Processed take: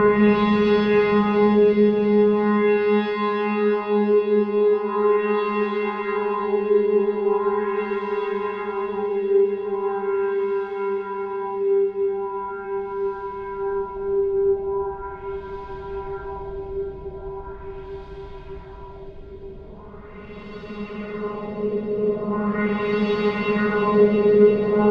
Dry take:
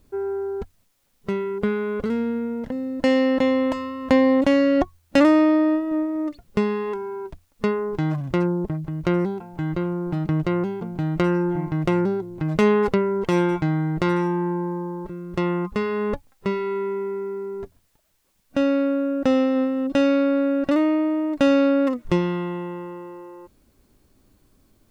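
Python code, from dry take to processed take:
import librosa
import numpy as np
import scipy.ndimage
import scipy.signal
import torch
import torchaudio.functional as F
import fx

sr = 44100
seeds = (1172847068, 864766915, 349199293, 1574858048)

y = fx.paulstretch(x, sr, seeds[0], factor=25.0, window_s=0.5, from_s=6.65)
y = fx.filter_lfo_lowpass(y, sr, shape='sine', hz=0.4, low_hz=470.0, high_hz=4100.0, q=1.9)
y = fx.echo_wet_highpass(y, sr, ms=345, feedback_pct=79, hz=2000.0, wet_db=-6)
y = y * librosa.db_to_amplitude(4.0)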